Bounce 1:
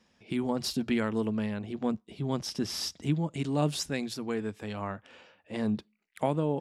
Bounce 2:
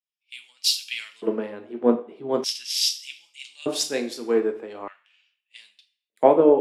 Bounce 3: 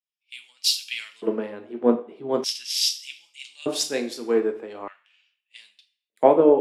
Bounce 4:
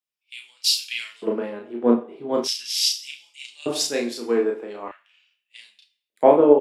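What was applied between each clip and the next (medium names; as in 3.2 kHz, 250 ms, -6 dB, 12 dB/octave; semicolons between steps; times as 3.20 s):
two-slope reverb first 0.55 s, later 1.8 s, DRR 5 dB; LFO high-pass square 0.41 Hz 380–2600 Hz; three bands expanded up and down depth 100%; trim +2.5 dB
no audible change
doubling 34 ms -3.5 dB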